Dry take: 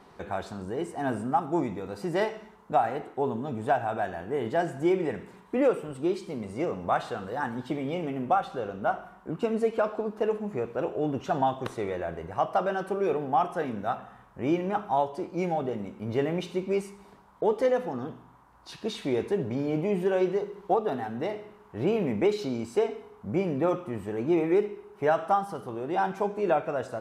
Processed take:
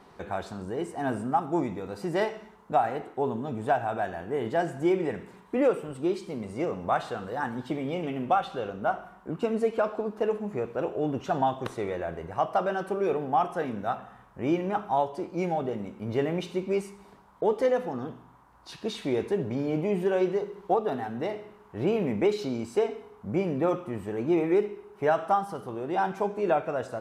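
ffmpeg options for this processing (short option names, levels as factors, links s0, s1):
-filter_complex "[0:a]asettb=1/sr,asplit=3[s0][s1][s2];[s0]atrim=end=8.034[s3];[s1]atrim=start=8.03:end=8.7,asetpts=PTS-STARTPTS,afade=t=in:d=0.004:c=qsin,afade=t=out:st=0.666:d=0.004:c=qsin,equalizer=f=3100:w=1.5:g=6[s4];[s2]atrim=start=8.696[s5];[s3][s4]acrossfade=d=0.004:c1=hsin:c2=qsin[s6];[s6][s5]acrossfade=d=0.004:c1=qsin:c2=hsin"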